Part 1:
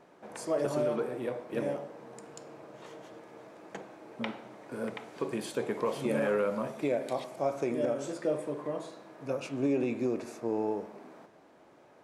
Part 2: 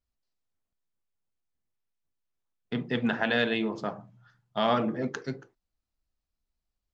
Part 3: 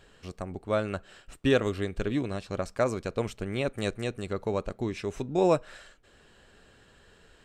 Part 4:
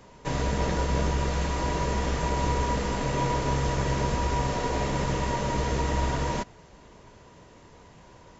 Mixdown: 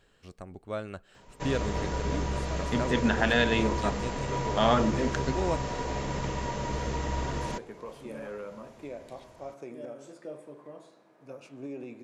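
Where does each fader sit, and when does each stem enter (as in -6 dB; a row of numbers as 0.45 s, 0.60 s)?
-11.0 dB, +1.5 dB, -7.5 dB, -5.0 dB; 2.00 s, 0.00 s, 0.00 s, 1.15 s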